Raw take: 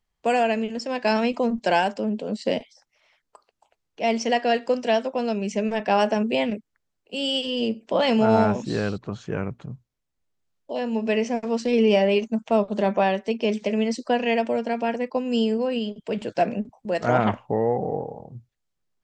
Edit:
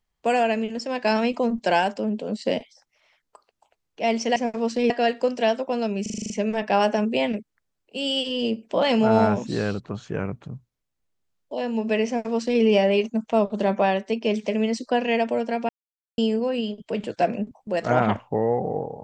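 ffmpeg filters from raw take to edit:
-filter_complex "[0:a]asplit=12[s0][s1][s2][s3][s4][s5][s6][s7][s8][s9][s10][s11];[s0]atrim=end=4.362[s12];[s1]atrim=start=11.248:end=11.792[s13];[s2]atrim=start=4.358:end=5.522[s14];[s3]atrim=start=5.478:end=5.522[s15];[s4]atrim=start=5.478:end=5.522[s16];[s5]atrim=start=5.478:end=5.522[s17];[s6]atrim=start=5.478:end=5.522[s18];[s7]atrim=start=5.478:end=5.522[s19];[s8]atrim=start=5.478:end=5.522[s20];[s9]atrim=start=5.478:end=14.87,asetpts=PTS-STARTPTS,afade=t=out:st=9.388:d=0.004:c=hsin[s21];[s10]atrim=start=14.87:end=15.36,asetpts=PTS-STARTPTS,volume=0[s22];[s11]atrim=start=15.36,asetpts=PTS-STARTPTS,afade=t=in:d=0.004:c=hsin[s23];[s12][s13]acrossfade=d=0.004:c1=hsin:c2=hsin[s24];[s24][s14]acrossfade=d=0.004:c1=hsin:c2=hsin[s25];[s25][s15]acrossfade=d=0.004:c1=hsin:c2=hsin[s26];[s26][s16]acrossfade=d=0.004:c1=hsin:c2=hsin[s27];[s27][s17]acrossfade=d=0.004:c1=hsin:c2=hsin[s28];[s28][s18]acrossfade=d=0.004:c1=hsin:c2=hsin[s29];[s29][s19]acrossfade=d=0.004:c1=hsin:c2=hsin[s30];[s30][s20]acrossfade=d=0.004:c1=hsin:c2=hsin[s31];[s21][s22][s23]concat=n=3:v=0:a=1[s32];[s31][s32]acrossfade=d=0.004:c1=hsin:c2=hsin"

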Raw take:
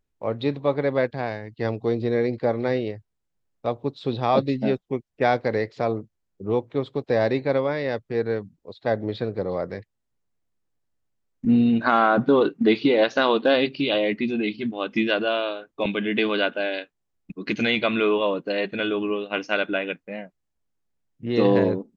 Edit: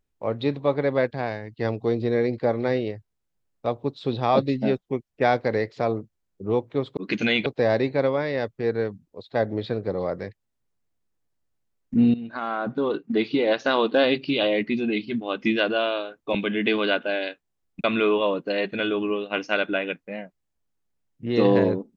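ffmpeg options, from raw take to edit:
-filter_complex "[0:a]asplit=5[s0][s1][s2][s3][s4];[s0]atrim=end=6.972[s5];[s1]atrim=start=17.348:end=17.842[s6];[s2]atrim=start=6.968:end=11.65,asetpts=PTS-STARTPTS,afade=t=out:st=4.678:d=0.004:c=hsin:silence=0.158489[s7];[s3]atrim=start=11.65:end=17.352,asetpts=PTS-STARTPTS,afade=t=in:d=1.98:silence=0.158489[s8];[s4]atrim=start=17.838[s9];[s5][s6]acrossfade=d=0.004:c1=hsin:c2=hsin[s10];[s7][s8]concat=n=2:v=0:a=1[s11];[s10][s11]acrossfade=d=0.004:c1=hsin:c2=hsin[s12];[s12][s9]acrossfade=d=0.004:c1=hsin:c2=hsin"

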